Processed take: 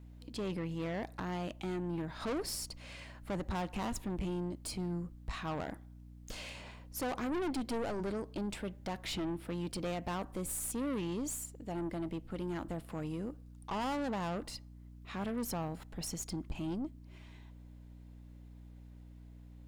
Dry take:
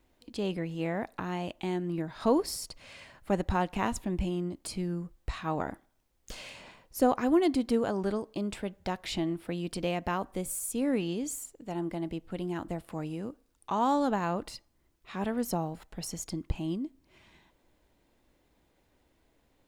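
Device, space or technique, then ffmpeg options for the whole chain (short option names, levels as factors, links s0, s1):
valve amplifier with mains hum: -filter_complex "[0:a]asplit=3[s0][s1][s2];[s0]afade=t=out:st=7.35:d=0.02[s3];[s1]highpass=f=180:w=0.5412,highpass=f=180:w=1.3066,afade=t=in:st=7.35:d=0.02,afade=t=out:st=7.99:d=0.02[s4];[s2]afade=t=in:st=7.99:d=0.02[s5];[s3][s4][s5]amix=inputs=3:normalize=0,aeval=exprs='(tanh(44.7*val(0)+0.3)-tanh(0.3))/44.7':c=same,aeval=exprs='val(0)+0.00282*(sin(2*PI*60*n/s)+sin(2*PI*2*60*n/s)/2+sin(2*PI*3*60*n/s)/3+sin(2*PI*4*60*n/s)/4+sin(2*PI*5*60*n/s)/5)':c=same"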